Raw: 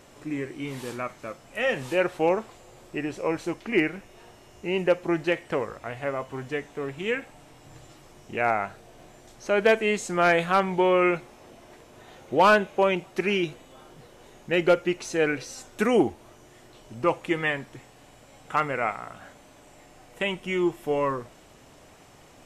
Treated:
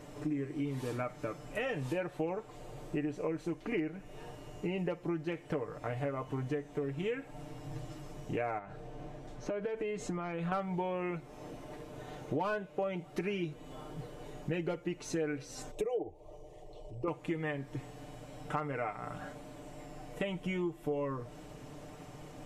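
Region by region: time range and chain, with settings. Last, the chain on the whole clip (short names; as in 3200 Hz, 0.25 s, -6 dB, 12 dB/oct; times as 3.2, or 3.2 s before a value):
8.58–10.52 LPF 3100 Hz 6 dB/oct + compressor, threshold -32 dBFS
15.71–17.08 formant sharpening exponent 1.5 + bell 130 Hz -12 dB 0.38 oct + fixed phaser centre 610 Hz, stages 4
whole clip: tilt shelf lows +5 dB, about 760 Hz; comb 6.7 ms, depth 64%; compressor 6:1, threshold -33 dBFS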